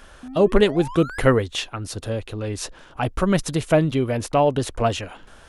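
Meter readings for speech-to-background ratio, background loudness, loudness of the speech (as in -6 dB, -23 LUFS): 15.0 dB, -37.0 LUFS, -22.0 LUFS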